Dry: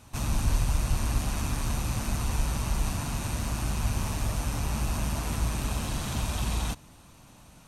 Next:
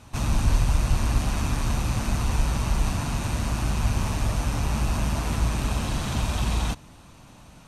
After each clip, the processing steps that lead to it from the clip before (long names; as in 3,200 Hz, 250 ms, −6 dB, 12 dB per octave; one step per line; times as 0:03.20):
high-shelf EQ 9,400 Hz −11 dB
level +4.5 dB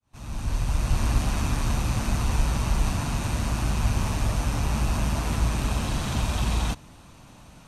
fade in at the beginning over 1.05 s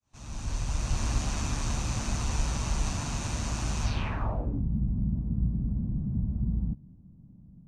low-pass filter sweep 6,800 Hz → 190 Hz, 0:03.82–0:04.66
level −5.5 dB